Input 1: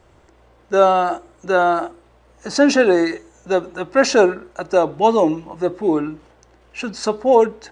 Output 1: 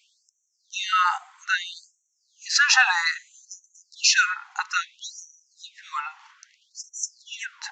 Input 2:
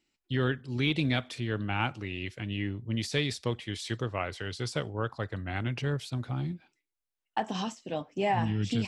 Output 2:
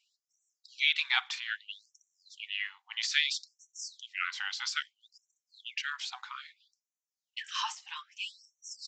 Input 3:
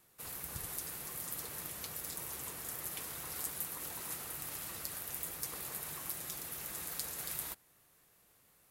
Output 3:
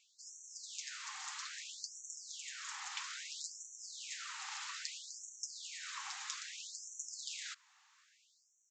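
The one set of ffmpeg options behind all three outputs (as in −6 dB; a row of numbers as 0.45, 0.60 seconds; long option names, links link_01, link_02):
-af "aresample=16000,aresample=44100,afftfilt=real='re*gte(b*sr/1024,730*pow(5700/730,0.5+0.5*sin(2*PI*0.61*pts/sr)))':imag='im*gte(b*sr/1024,730*pow(5700/730,0.5+0.5*sin(2*PI*0.61*pts/sr)))':win_size=1024:overlap=0.75,volume=5.5dB"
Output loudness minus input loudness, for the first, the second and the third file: −5.0, −1.0, −4.0 LU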